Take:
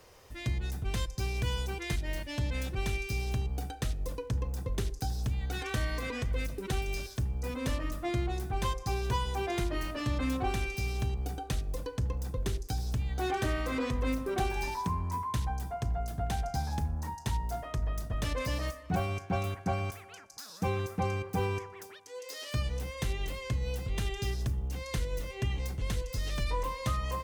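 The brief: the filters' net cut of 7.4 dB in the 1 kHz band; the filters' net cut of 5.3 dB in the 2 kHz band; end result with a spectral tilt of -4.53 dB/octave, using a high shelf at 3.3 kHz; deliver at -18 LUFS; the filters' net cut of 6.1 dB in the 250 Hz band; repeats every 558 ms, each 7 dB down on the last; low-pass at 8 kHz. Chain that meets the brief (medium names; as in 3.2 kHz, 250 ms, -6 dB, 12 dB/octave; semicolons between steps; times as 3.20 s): low-pass 8 kHz; peaking EQ 250 Hz -8.5 dB; peaking EQ 1 kHz -8.5 dB; peaking EQ 2 kHz -7 dB; treble shelf 3.3 kHz +7 dB; feedback delay 558 ms, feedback 45%, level -7 dB; trim +17 dB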